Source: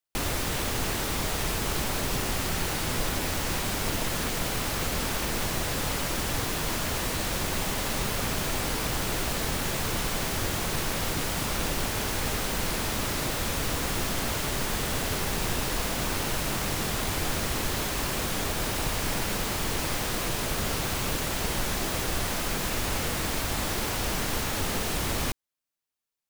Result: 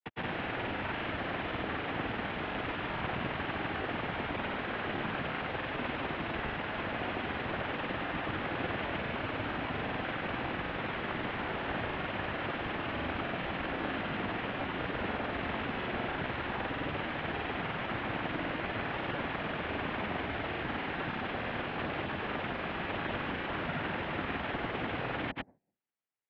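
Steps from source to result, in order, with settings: de-hum 154.1 Hz, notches 5; noise-vocoded speech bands 6; granulator; mistuned SSB -120 Hz 220–3000 Hz

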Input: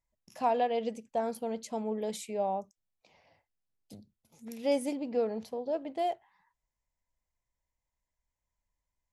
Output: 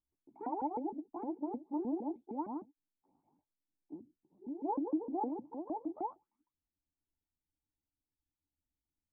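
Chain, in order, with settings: sawtooth pitch modulation +12 st, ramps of 154 ms; cascade formant filter u; trim +7 dB

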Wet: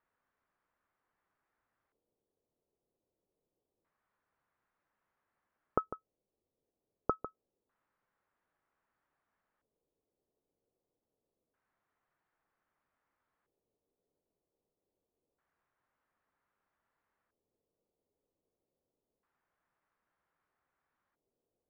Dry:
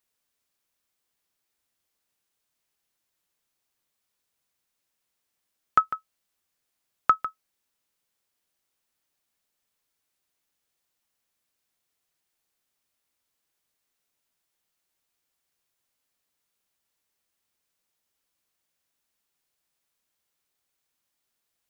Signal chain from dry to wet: 5.96–7.10 s: distance through air 340 m; LFO low-pass square 0.26 Hz 460–1800 Hz; resonant high shelf 1.5 kHz -6.5 dB, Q 1.5; trim +2 dB

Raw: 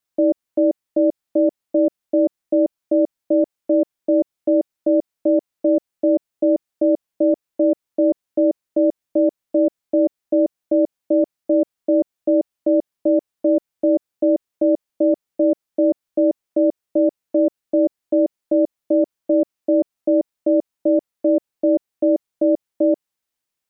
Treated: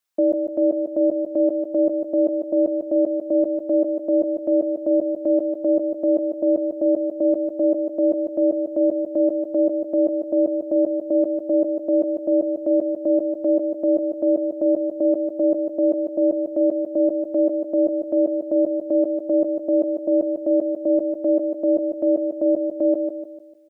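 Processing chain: bass shelf 320 Hz -9.5 dB; on a send: feedback delay 149 ms, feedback 42%, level -6 dB; on the sum: trim +1.5 dB

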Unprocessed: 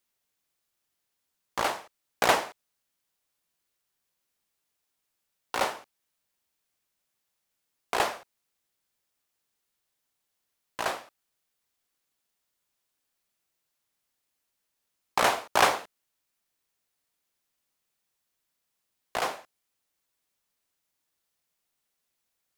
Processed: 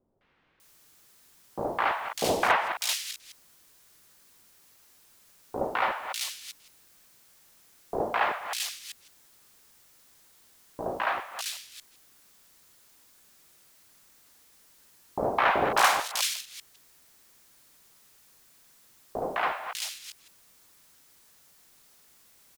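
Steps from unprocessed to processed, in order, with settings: chunks repeated in reverse 160 ms, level -13.5 dB; power-law waveshaper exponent 0.7; three bands offset in time lows, mids, highs 210/600 ms, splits 680/2800 Hz

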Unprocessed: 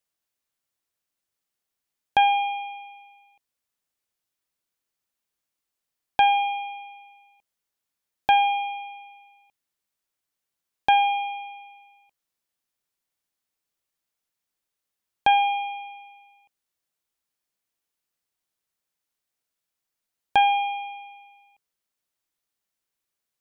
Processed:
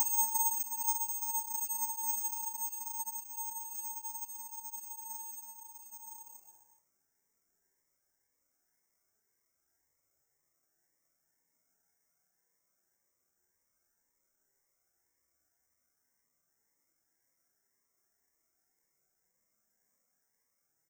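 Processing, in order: tape speed +12%; rippled Chebyshev low-pass 2.2 kHz, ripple 3 dB; Paulstretch 14×, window 0.10 s, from 14.26 s; doubling 28 ms -5 dB; careless resampling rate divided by 6×, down filtered, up zero stuff; Shepard-style phaser rising 1.9 Hz; trim +8 dB

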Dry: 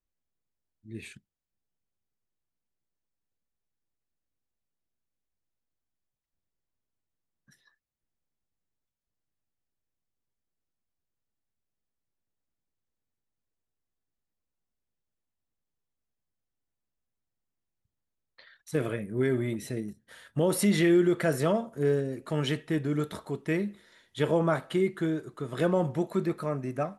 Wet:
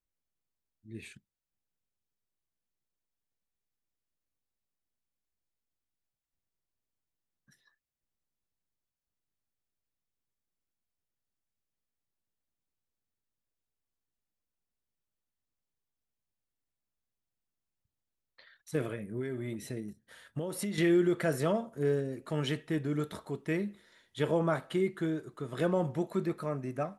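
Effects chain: 18.83–20.78 s: compression 6:1, threshold -29 dBFS, peak gain reduction 9.5 dB; trim -3.5 dB

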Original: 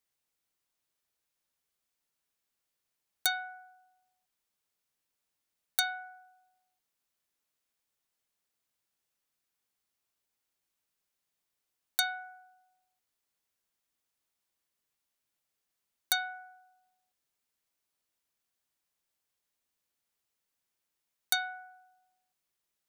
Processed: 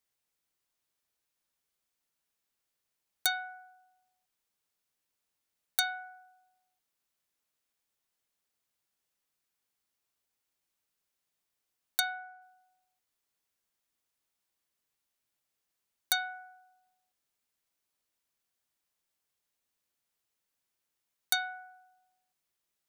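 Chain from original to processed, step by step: 12.00–12.42 s: treble shelf 5.2 kHz -10.5 dB

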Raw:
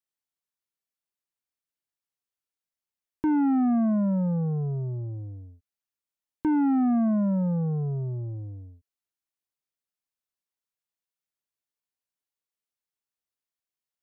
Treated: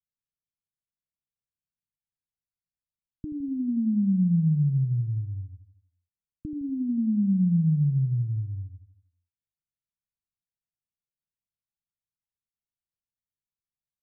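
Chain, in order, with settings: inverse Chebyshev low-pass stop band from 1.1 kHz, stop band 80 dB; on a send: feedback delay 81 ms, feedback 55%, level -11.5 dB; on the sum: trim +5.5 dB

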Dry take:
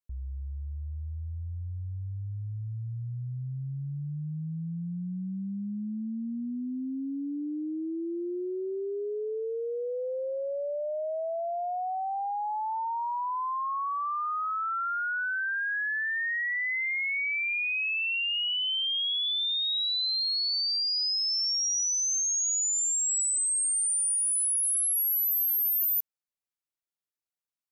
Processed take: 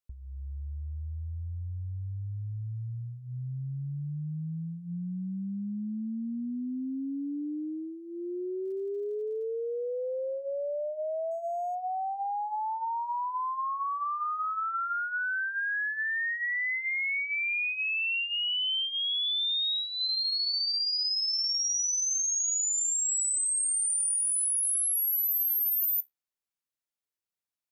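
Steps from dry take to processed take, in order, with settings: flange 0.1 Hz, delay 7.6 ms, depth 7.4 ms, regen -71%; 8.64–9.43 s: crackle 99 per s -59 dBFS; 11.31–11.75 s: decimation joined by straight lines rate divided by 6×; trim +3.5 dB

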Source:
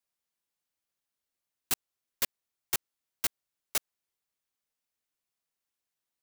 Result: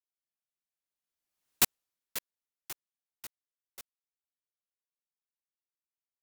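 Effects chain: Doppler pass-by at 1.54 s, 21 m/s, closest 2.1 m; trim +8.5 dB

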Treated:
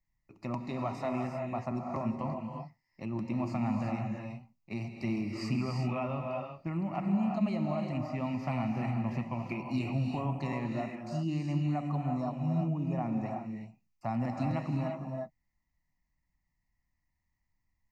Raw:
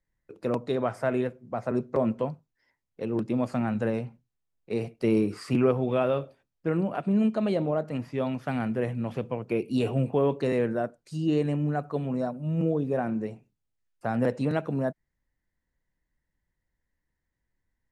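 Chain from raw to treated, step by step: compression 3:1, threshold -26 dBFS, peak gain reduction 7 dB; static phaser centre 2.3 kHz, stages 8; gated-style reverb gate 390 ms rising, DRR 2 dB

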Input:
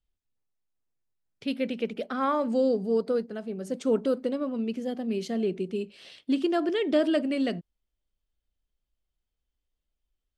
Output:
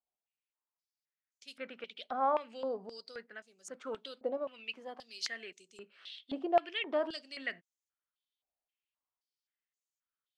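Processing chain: 4.37–5.60 s: tilt EQ +2.5 dB/octave; step-sequenced band-pass 3.8 Hz 730–6700 Hz; trim +5.5 dB

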